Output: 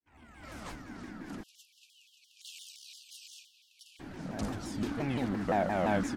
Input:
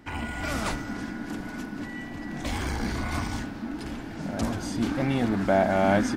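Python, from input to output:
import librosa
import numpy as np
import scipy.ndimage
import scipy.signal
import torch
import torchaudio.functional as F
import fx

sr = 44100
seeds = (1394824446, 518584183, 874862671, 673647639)

y = fx.fade_in_head(x, sr, length_s=1.5)
y = fx.brickwall_highpass(y, sr, low_hz=2600.0, at=(1.42, 3.99), fade=0.02)
y = fx.vibrato_shape(y, sr, shape='saw_down', rate_hz=5.8, depth_cents=250.0)
y = F.gain(torch.from_numpy(y), -7.5).numpy()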